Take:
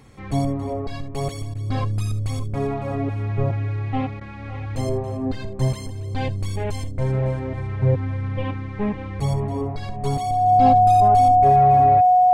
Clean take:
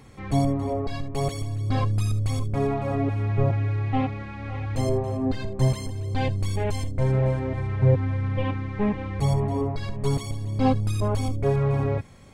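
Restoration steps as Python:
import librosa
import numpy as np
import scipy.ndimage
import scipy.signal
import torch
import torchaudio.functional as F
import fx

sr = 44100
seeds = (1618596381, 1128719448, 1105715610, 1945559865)

y = fx.notch(x, sr, hz=730.0, q=30.0)
y = fx.fix_interpolate(y, sr, at_s=(1.54, 4.2), length_ms=10.0)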